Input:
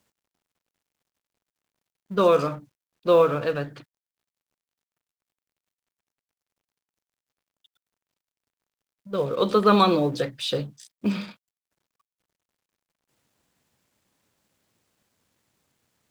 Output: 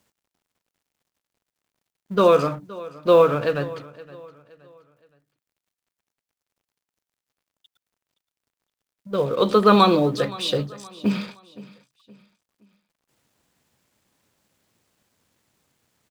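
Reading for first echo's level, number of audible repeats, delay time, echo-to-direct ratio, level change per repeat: −19.5 dB, 2, 519 ms, −19.0 dB, −8.5 dB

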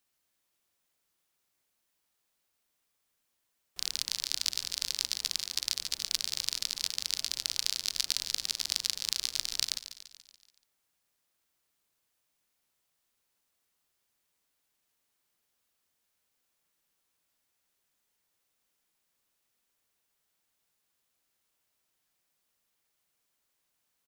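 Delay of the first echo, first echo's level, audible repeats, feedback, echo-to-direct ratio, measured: 143 ms, −13.0 dB, 5, 57%, −11.5 dB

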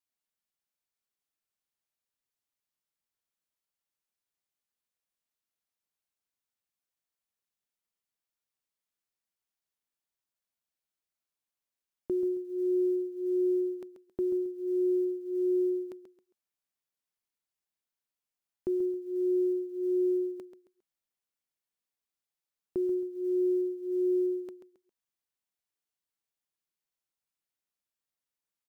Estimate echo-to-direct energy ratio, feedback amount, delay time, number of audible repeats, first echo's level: −9.5 dB, 29%, 135 ms, 3, −10.0 dB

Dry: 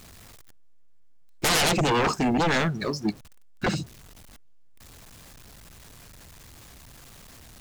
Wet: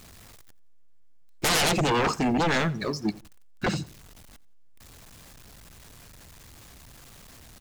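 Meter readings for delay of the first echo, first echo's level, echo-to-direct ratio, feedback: 87 ms, −22.0 dB, −21.5 dB, 29%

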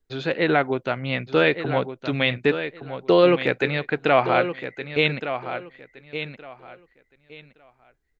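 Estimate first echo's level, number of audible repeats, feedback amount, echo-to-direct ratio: −10.0 dB, 2, 21%, −10.0 dB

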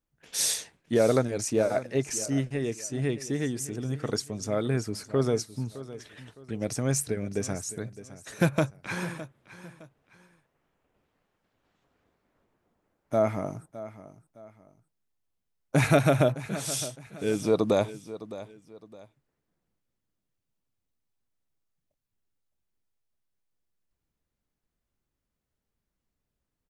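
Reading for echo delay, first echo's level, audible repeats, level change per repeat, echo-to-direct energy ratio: 612 ms, −15.5 dB, 2, −9.5 dB, −15.0 dB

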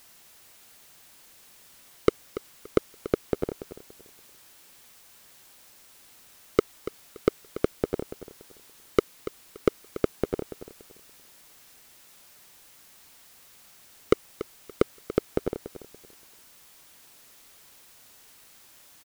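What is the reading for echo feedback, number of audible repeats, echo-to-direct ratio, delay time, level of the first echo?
25%, 2, −13.5 dB, 286 ms, −14.0 dB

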